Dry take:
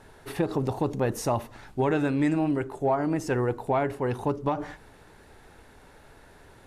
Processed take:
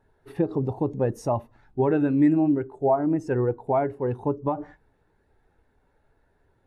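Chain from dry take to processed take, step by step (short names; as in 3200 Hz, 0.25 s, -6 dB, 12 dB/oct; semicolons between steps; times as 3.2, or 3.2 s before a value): spectral expander 1.5:1; gain +4 dB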